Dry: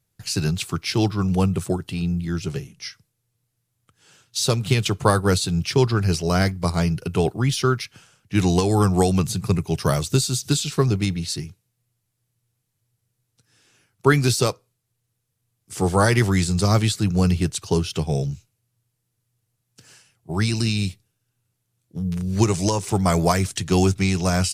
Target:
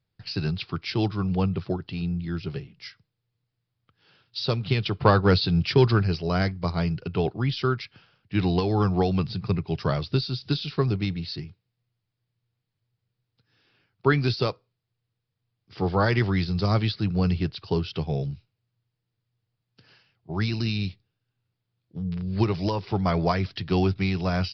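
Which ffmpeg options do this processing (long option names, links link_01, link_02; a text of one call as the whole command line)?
ffmpeg -i in.wav -filter_complex "[0:a]asettb=1/sr,asplit=3[link_01][link_02][link_03];[link_01]atrim=end=5.014[link_04];[link_02]atrim=start=5.01:end=6.03,asetpts=PTS-STARTPTS,afade=type=in:duration=0.004:curve=qsin,afade=type=out:start_time=1.016:duration=0.004:curve=qsin,acontrast=25[link_05];[link_03]atrim=start=6.026[link_06];[link_04][link_05]acrossfade=duration=0.004:curve1=hsin:curve2=qsin[link_07];[link_07][link_06]acrossfade=duration=0.004:curve1=qsin:curve2=hsin,aresample=11025,aresample=44100,volume=-4.5dB" out.wav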